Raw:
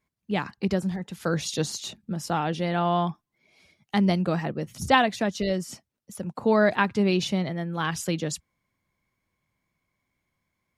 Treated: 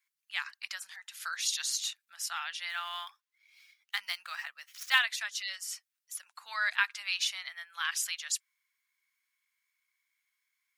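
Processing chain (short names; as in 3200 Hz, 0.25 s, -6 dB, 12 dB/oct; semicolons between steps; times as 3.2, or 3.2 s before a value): 2.69–4.99 median filter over 5 samples; inverse Chebyshev high-pass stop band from 420 Hz, stop band 60 dB; high shelf 8200 Hz +5.5 dB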